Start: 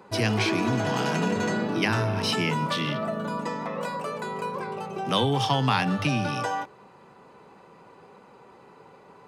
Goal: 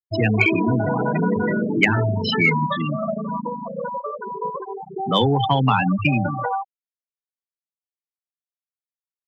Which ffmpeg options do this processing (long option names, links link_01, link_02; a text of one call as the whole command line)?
ffmpeg -i in.wav -af "afftfilt=real='re*gte(hypot(re,im),0.126)':imag='im*gte(hypot(re,im),0.126)':win_size=1024:overlap=0.75,equalizer=frequency=2200:width_type=o:width=0.22:gain=13,acontrast=60" out.wav